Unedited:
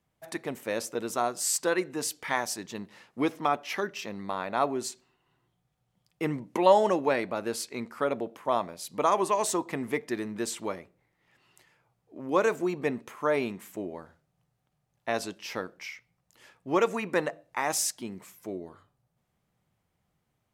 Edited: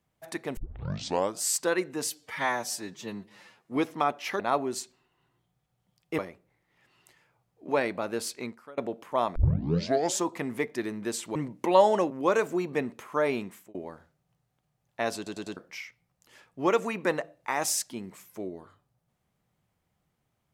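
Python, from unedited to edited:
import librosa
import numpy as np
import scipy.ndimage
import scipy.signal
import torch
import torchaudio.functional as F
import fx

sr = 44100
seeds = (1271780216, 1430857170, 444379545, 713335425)

y = fx.edit(x, sr, fx.tape_start(start_s=0.57, length_s=0.83),
    fx.stretch_span(start_s=2.1, length_s=1.11, factor=1.5),
    fx.cut(start_s=3.84, length_s=0.64),
    fx.swap(start_s=6.27, length_s=0.75, other_s=10.69, other_length_s=1.5),
    fx.fade_out_to(start_s=7.77, length_s=0.34, curve='qua', floor_db=-22.5),
    fx.tape_start(start_s=8.69, length_s=0.89),
    fx.fade_out_span(start_s=13.56, length_s=0.27),
    fx.stutter_over(start_s=15.25, slice_s=0.1, count=4), tone=tone)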